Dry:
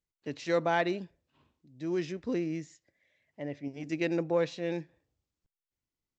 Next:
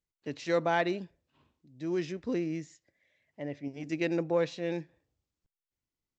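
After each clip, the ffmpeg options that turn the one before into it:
-af anull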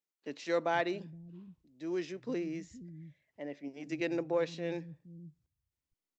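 -filter_complex "[0:a]acrossover=split=180[a][b];[a]adelay=470[c];[c][b]amix=inputs=2:normalize=0,volume=-3dB"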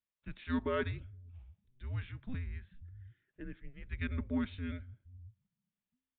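-af "afreqshift=-260,asuperstop=centerf=750:order=4:qfactor=6.7,aresample=8000,aresample=44100,volume=-2.5dB"

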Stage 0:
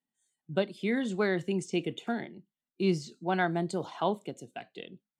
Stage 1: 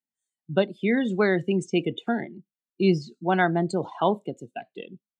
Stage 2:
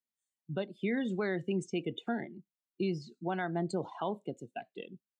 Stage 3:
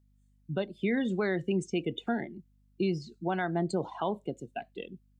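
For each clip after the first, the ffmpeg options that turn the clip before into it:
-af "afftdn=nr=16:nf=-41,volume=6.5dB"
-af "alimiter=limit=-18dB:level=0:latency=1:release=260,volume=-5.5dB"
-af "aeval=exprs='val(0)+0.000398*(sin(2*PI*50*n/s)+sin(2*PI*2*50*n/s)/2+sin(2*PI*3*50*n/s)/3+sin(2*PI*4*50*n/s)/4+sin(2*PI*5*50*n/s)/5)':c=same,volume=3.5dB"

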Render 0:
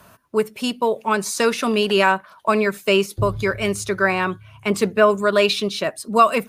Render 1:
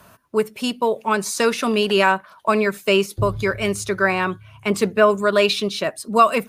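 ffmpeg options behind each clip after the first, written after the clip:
-af anull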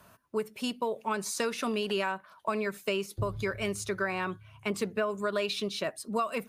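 -af "acompressor=threshold=-18dB:ratio=6,volume=-8.5dB"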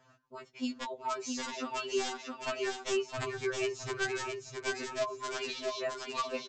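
-af "aresample=16000,aeval=exprs='(mod(10*val(0)+1,2)-1)/10':c=same,aresample=44100,aecho=1:1:665|1330|1995|2660:0.631|0.183|0.0531|0.0154,afftfilt=real='re*2.45*eq(mod(b,6),0)':imag='im*2.45*eq(mod(b,6),0)':win_size=2048:overlap=0.75,volume=-2.5dB"

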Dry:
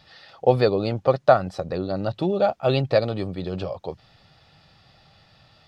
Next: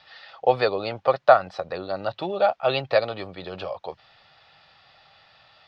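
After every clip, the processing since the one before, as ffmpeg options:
-filter_complex "[0:a]acrossover=split=570 4800:gain=0.158 1 0.0631[a][b][c];[a][b][c]amix=inputs=3:normalize=0,volume=4dB"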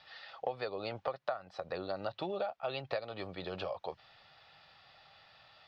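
-af "acompressor=threshold=-28dB:ratio=10,volume=-5dB"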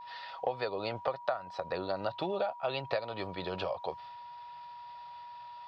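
-af "agate=range=-33dB:threshold=-56dB:ratio=3:detection=peak,aeval=exprs='val(0)+0.00398*sin(2*PI*960*n/s)':c=same,volume=3.5dB"

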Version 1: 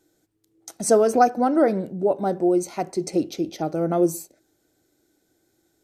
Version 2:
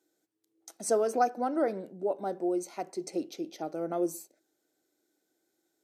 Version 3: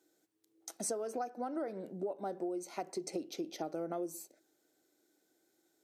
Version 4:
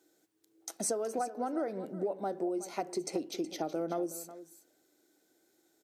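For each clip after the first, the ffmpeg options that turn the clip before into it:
-af "highpass=270,volume=-9dB"
-af "acompressor=threshold=-37dB:ratio=12,volume=2.5dB"
-af "aecho=1:1:370:0.178,volume=4dB"

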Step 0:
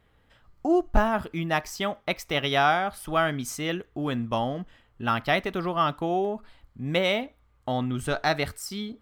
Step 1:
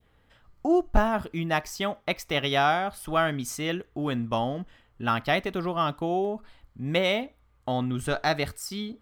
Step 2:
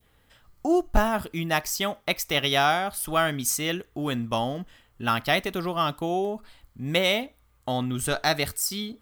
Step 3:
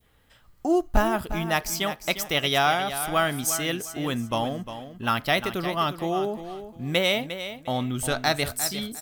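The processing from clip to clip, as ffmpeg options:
-af "adynamicequalizer=threshold=0.0126:dfrequency=1500:dqfactor=0.82:tfrequency=1500:tqfactor=0.82:attack=5:release=100:ratio=0.375:range=2:mode=cutabove:tftype=bell"
-af "crystalizer=i=2.5:c=0"
-af "aecho=1:1:353|706|1059:0.282|0.0676|0.0162"

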